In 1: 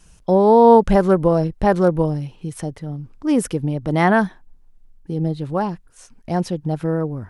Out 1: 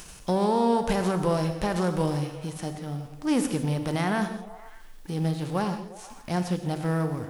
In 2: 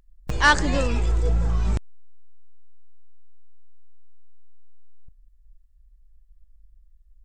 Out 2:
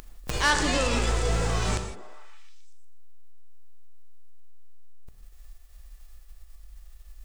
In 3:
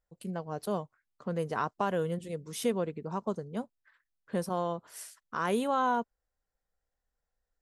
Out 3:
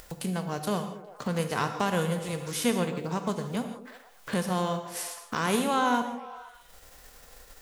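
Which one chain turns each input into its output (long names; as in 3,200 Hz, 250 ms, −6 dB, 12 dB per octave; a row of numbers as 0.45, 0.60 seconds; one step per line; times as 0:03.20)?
spectral envelope flattened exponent 0.6
brickwall limiter −9.5 dBFS
upward compression, threshold −29 dBFS
on a send: echo through a band-pass that steps 119 ms, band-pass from 230 Hz, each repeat 0.7 octaves, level −9 dB
on the sum: reverb whose tail is shaped and stops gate 190 ms flat, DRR 7 dB
normalise the peak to −12 dBFS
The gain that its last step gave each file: −6.5, −4.0, +2.5 decibels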